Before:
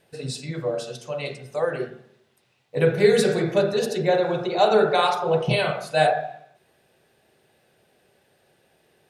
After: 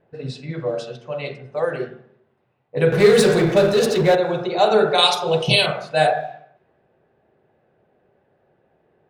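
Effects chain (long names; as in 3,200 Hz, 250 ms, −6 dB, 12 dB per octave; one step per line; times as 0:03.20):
low-pass that shuts in the quiet parts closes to 1,200 Hz, open at −18.5 dBFS
0:02.92–0:04.15: power curve on the samples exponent 0.7
0:04.98–0:05.66: high shelf with overshoot 2,400 Hz +9 dB, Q 1.5
level +2 dB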